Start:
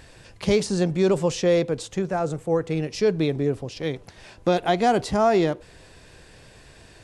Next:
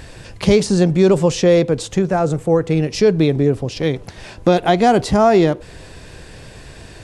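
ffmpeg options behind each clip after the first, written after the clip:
ffmpeg -i in.wav -filter_complex "[0:a]lowshelf=frequency=360:gain=4,asplit=2[link_01][link_02];[link_02]acompressor=threshold=-26dB:ratio=6,volume=-1.5dB[link_03];[link_01][link_03]amix=inputs=2:normalize=0,volume=3.5dB" out.wav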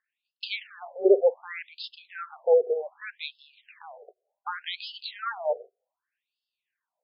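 ffmpeg -i in.wav -af "equalizer=frequency=180:width=0.38:gain=4.5,agate=range=-34dB:threshold=-27dB:ratio=16:detection=peak,afftfilt=real='re*between(b*sr/1024,520*pow(3800/520,0.5+0.5*sin(2*PI*0.66*pts/sr))/1.41,520*pow(3800/520,0.5+0.5*sin(2*PI*0.66*pts/sr))*1.41)':imag='im*between(b*sr/1024,520*pow(3800/520,0.5+0.5*sin(2*PI*0.66*pts/sr))/1.41,520*pow(3800/520,0.5+0.5*sin(2*PI*0.66*pts/sr))*1.41)':win_size=1024:overlap=0.75,volume=-5dB" out.wav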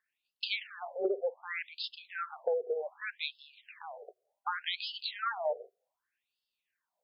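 ffmpeg -i in.wav -af "acompressor=threshold=-28dB:ratio=16" out.wav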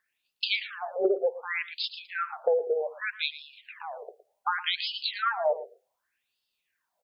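ffmpeg -i in.wav -af "aecho=1:1:114:0.178,volume=6.5dB" out.wav

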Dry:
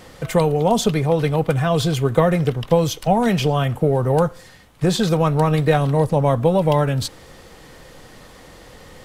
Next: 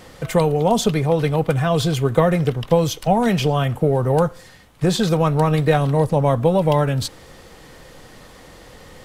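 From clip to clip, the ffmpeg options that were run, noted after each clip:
ffmpeg -i in.wav -af anull out.wav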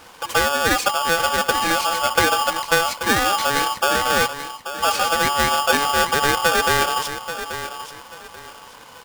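ffmpeg -i in.wav -af "aecho=1:1:834|1668|2502:0.282|0.0761|0.0205,aeval=exprs='val(0)*sgn(sin(2*PI*1000*n/s))':channel_layout=same,volume=-2dB" out.wav

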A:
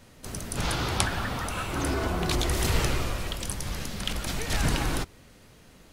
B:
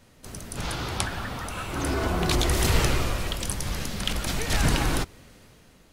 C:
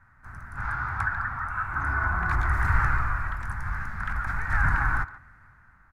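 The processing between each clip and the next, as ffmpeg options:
ffmpeg -i in.wav -af "dynaudnorm=framelen=200:gausssize=7:maxgain=6.5dB,volume=-3dB" out.wav
ffmpeg -i in.wav -filter_complex "[0:a]firequalizer=gain_entry='entry(100,0);entry(170,-10);entry(480,-23);entry(830,-1);entry(1500,11);entry(3000,-27);entry(5000,-25)':delay=0.05:min_phase=1,asplit=2[link_01][link_02];[link_02]adelay=140,highpass=300,lowpass=3400,asoftclip=type=hard:threshold=-19.5dB,volume=-16dB[link_03];[link_01][link_03]amix=inputs=2:normalize=0" out.wav

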